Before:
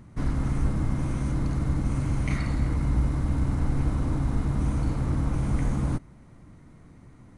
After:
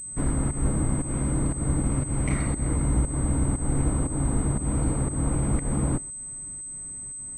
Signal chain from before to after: volume shaper 118 bpm, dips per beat 1, -14 dB, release 203 ms; dynamic bell 450 Hz, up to +6 dB, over -45 dBFS, Q 0.75; class-D stage that switches slowly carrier 8.2 kHz

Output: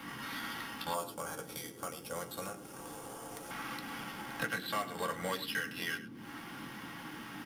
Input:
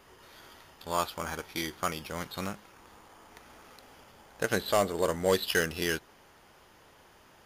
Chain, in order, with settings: amplifier tone stack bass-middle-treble 10-0-10; compression 5:1, threshold -53 dBFS, peak gain reduction 22 dB; waveshaping leveller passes 2; echo from a far wall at 18 m, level -14 dB; band noise 63–340 Hz -66 dBFS; 0.94–3.51 s: graphic EQ 250/500/1000/2000/4000/8000 Hz -8/+11/-5/-12/-6/+8 dB; reverberation RT60 0.15 s, pre-delay 3 ms, DRR 1 dB; trim +3.5 dB

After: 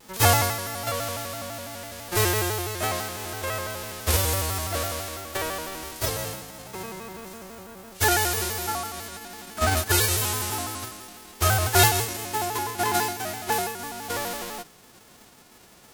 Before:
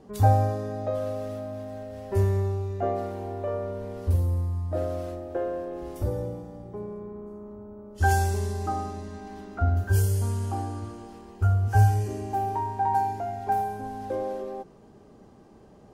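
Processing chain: formants flattened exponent 0.3; vibrato with a chosen wave square 6 Hz, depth 160 cents

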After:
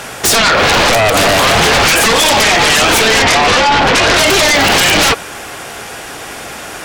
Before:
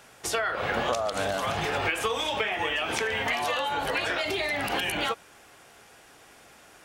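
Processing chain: 3.22–4.14 s: Bessel low-pass 2.7 kHz, order 2; sine folder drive 16 dB, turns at -13 dBFS; trim +6.5 dB

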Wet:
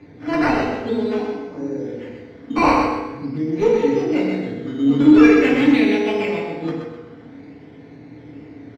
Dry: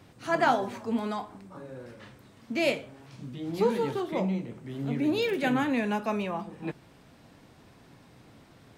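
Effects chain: local Wiener filter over 15 samples; high-pass 77 Hz; resonant high shelf 1.7 kHz +9.5 dB, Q 3; in parallel at +2 dB: compression, threshold -39 dBFS, peak gain reduction 24 dB; on the sum: small resonant body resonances 280/410/3400 Hz, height 8 dB; one-sided clip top -15.5 dBFS; decimation with a swept rate 10×, swing 60% 0.47 Hz; distance through air 230 m; on a send: feedback delay 128 ms, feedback 35%, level -5 dB; on the sum: FDN reverb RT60 1.1 s, low-frequency decay 0.8×, high-frequency decay 0.55×, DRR -3 dB; trim -1.5 dB

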